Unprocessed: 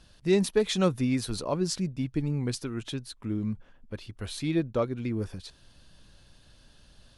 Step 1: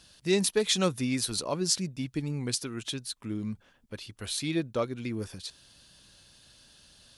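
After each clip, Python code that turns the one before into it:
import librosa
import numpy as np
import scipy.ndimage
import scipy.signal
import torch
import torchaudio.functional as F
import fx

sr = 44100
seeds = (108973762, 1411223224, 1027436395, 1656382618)

y = fx.highpass(x, sr, hz=95.0, slope=6)
y = fx.high_shelf(y, sr, hz=2600.0, db=11.0)
y = F.gain(torch.from_numpy(y), -2.5).numpy()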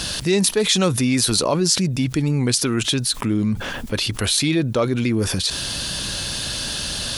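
y = fx.env_flatten(x, sr, amount_pct=70)
y = F.gain(torch.from_numpy(y), 5.5).numpy()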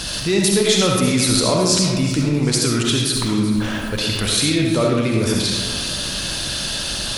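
y = fx.echo_feedback(x, sr, ms=380, feedback_pct=41, wet_db=-14.0)
y = fx.rev_freeverb(y, sr, rt60_s=1.1, hf_ratio=0.7, predelay_ms=25, drr_db=-1.0)
y = F.gain(torch.from_numpy(y), -1.0).numpy()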